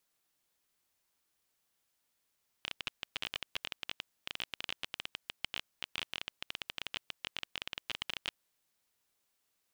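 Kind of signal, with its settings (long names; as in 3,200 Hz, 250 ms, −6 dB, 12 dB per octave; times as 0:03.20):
Geiger counter clicks 18 per second −19 dBFS 5.75 s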